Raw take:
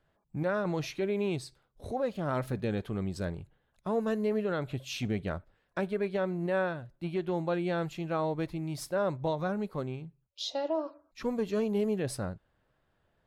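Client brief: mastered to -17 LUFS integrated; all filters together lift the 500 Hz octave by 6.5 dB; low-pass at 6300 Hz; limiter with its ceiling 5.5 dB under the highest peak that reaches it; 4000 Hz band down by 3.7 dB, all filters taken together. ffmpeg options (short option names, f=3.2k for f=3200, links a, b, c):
-af "lowpass=6.3k,equalizer=f=500:t=o:g=8,equalizer=f=4k:t=o:g=-4,volume=13.5dB,alimiter=limit=-6.5dB:level=0:latency=1"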